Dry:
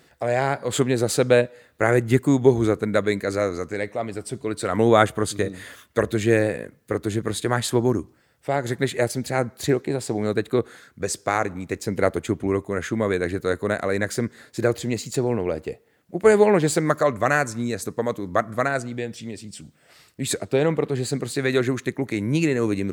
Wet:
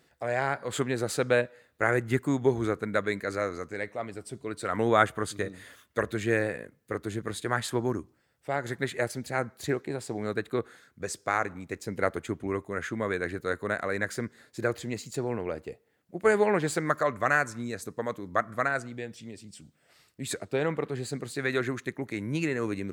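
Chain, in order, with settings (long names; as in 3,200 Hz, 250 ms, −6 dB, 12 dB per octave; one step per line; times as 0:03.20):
dynamic equaliser 1,500 Hz, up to +7 dB, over −37 dBFS, Q 0.92
level −9 dB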